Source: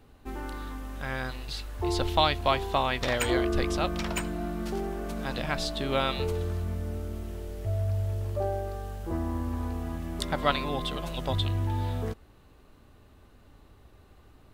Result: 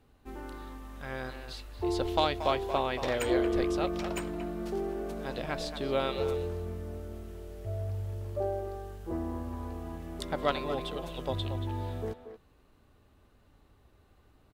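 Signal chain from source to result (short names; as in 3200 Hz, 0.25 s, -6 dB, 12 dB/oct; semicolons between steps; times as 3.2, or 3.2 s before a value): added harmonics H 2 -13 dB, 4 -25 dB, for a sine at -7.5 dBFS; dynamic EQ 430 Hz, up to +8 dB, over -43 dBFS, Q 1; speakerphone echo 0.23 s, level -9 dB; gain -7 dB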